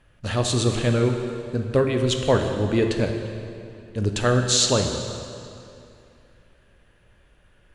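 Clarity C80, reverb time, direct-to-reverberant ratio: 6.5 dB, 2.7 s, 4.0 dB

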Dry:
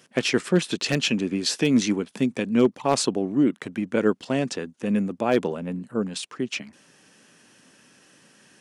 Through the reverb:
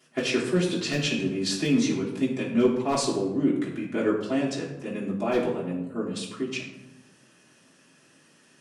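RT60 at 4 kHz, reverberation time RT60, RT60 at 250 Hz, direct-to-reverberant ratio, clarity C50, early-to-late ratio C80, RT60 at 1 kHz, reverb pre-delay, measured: 0.55 s, 0.95 s, 1.3 s, −9.0 dB, 5.0 dB, 7.5 dB, 0.90 s, 3 ms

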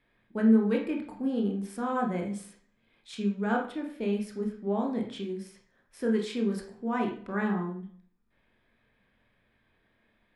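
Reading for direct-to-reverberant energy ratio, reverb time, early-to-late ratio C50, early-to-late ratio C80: 1.0 dB, 0.55 s, 6.5 dB, 11.0 dB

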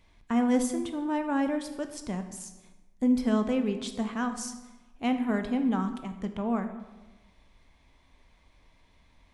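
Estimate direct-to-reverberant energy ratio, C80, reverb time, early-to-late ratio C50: 7.0 dB, 11.5 dB, 1.1 s, 9.5 dB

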